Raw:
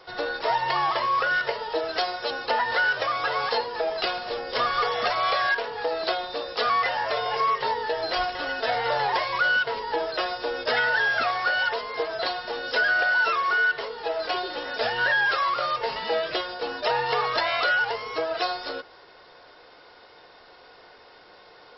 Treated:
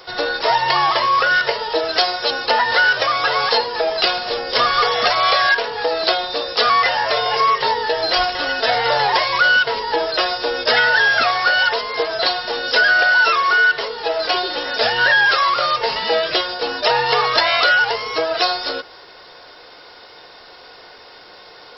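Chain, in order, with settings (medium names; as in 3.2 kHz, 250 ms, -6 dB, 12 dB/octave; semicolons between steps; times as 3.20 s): treble shelf 4.5 kHz +11.5 dB; trim +7 dB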